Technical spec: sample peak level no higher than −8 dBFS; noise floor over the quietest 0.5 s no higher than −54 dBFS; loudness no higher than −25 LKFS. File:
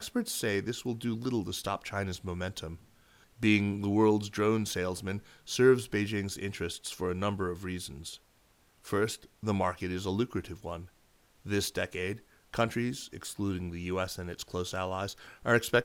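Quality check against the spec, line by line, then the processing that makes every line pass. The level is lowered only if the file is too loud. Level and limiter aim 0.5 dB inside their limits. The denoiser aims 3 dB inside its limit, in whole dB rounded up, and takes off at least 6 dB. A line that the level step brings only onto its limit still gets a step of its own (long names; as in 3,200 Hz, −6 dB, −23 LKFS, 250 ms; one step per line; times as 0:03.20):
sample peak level −11.5 dBFS: in spec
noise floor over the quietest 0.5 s −66 dBFS: in spec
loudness −32.0 LKFS: in spec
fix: no processing needed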